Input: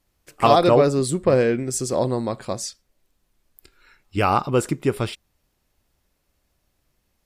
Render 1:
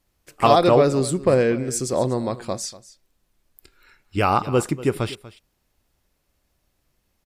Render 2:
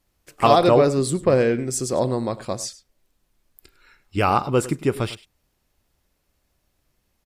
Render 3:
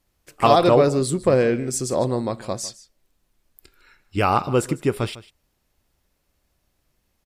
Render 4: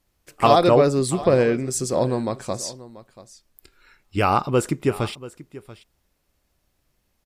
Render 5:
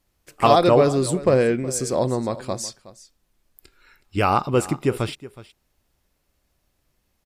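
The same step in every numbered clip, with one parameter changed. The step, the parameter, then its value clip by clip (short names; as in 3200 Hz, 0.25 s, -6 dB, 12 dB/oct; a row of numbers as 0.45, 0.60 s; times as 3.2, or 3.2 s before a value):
echo, time: 0.241, 0.101, 0.152, 0.685, 0.369 s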